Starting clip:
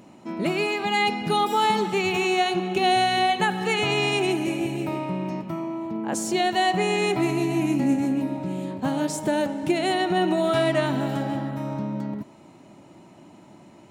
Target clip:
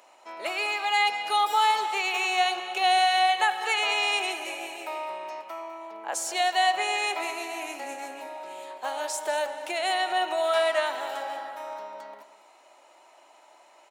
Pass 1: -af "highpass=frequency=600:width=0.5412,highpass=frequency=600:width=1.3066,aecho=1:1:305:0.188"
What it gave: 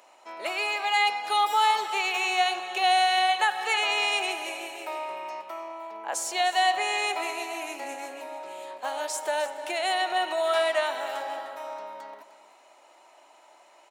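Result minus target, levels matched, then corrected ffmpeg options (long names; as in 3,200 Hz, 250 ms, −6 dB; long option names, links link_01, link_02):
echo 104 ms late
-af "highpass=frequency=600:width=0.5412,highpass=frequency=600:width=1.3066,aecho=1:1:201:0.188"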